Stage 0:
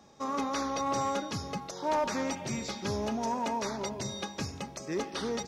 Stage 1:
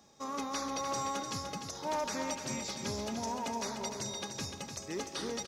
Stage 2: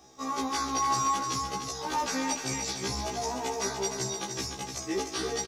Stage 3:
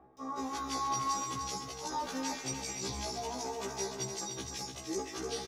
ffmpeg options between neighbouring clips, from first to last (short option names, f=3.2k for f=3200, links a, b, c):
-filter_complex "[0:a]highshelf=f=4.2k:g=10,asplit=2[a][b];[b]aecho=0:1:298|596|894|1192:0.447|0.161|0.0579|0.0208[c];[a][c]amix=inputs=2:normalize=0,volume=-6dB"
-af "aecho=1:1:2.6:0.46,afftfilt=real='re*1.73*eq(mod(b,3),0)':imag='im*1.73*eq(mod(b,3),0)':win_size=2048:overlap=0.75,volume=8dB"
-filter_complex "[0:a]areverse,acompressor=mode=upward:threshold=-35dB:ratio=2.5,areverse,acrossover=split=1700[a][b];[b]adelay=170[c];[a][c]amix=inputs=2:normalize=0,volume=-5.5dB"